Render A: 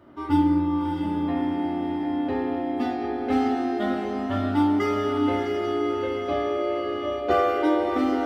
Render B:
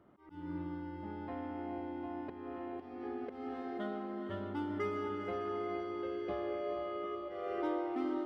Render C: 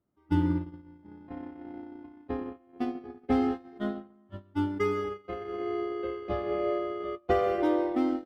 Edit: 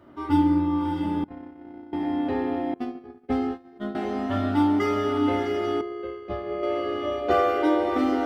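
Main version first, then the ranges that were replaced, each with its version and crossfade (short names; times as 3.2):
A
1.24–1.93 from C
2.74–3.95 from C
5.81–6.63 from C
not used: B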